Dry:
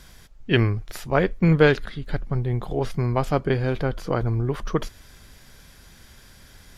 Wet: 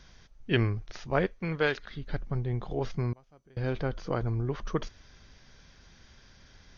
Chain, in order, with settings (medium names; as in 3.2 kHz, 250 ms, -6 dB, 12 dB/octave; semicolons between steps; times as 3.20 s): 1.26–1.91 s: bass shelf 410 Hz -11.5 dB; 3.12–3.57 s: inverted gate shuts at -22 dBFS, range -30 dB; trim -6.5 dB; MP2 64 kbps 24 kHz